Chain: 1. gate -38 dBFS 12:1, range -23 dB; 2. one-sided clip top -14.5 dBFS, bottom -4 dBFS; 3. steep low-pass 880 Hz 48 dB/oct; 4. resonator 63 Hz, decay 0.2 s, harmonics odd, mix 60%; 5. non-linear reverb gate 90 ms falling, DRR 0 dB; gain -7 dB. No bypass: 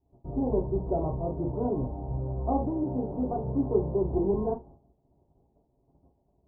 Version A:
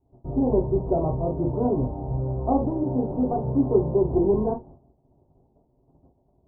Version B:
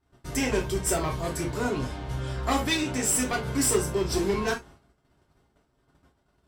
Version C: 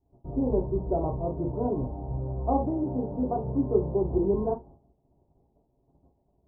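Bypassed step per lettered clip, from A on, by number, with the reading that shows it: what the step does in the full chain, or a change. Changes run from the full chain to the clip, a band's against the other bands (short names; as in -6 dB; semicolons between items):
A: 4, loudness change +5.5 LU; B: 3, 1 kHz band +3.5 dB; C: 2, distortion -12 dB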